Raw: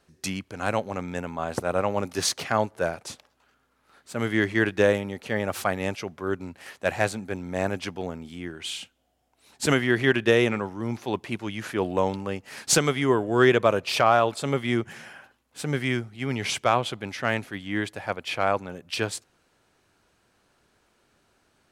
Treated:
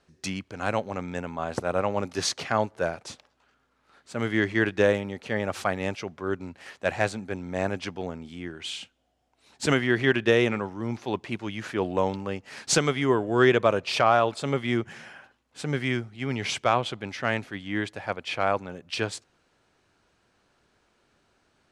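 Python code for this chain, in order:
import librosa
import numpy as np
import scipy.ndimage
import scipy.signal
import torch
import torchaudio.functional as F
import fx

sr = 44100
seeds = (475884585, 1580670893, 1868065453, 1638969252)

y = scipy.signal.sosfilt(scipy.signal.butter(2, 7400.0, 'lowpass', fs=sr, output='sos'), x)
y = y * librosa.db_to_amplitude(-1.0)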